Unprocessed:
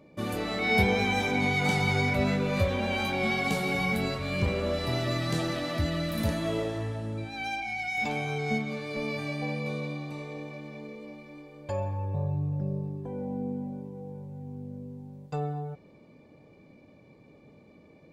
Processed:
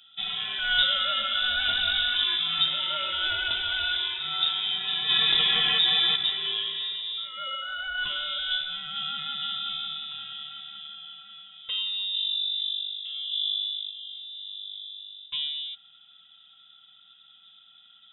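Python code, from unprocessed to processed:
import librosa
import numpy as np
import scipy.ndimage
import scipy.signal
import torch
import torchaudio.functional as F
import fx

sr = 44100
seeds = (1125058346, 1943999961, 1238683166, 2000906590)

y = fx.tilt_eq(x, sr, slope=-2.0, at=(13.32, 13.91))
y = fx.freq_invert(y, sr, carrier_hz=3700)
y = fx.env_flatten(y, sr, amount_pct=70, at=(5.08, 6.15), fade=0.02)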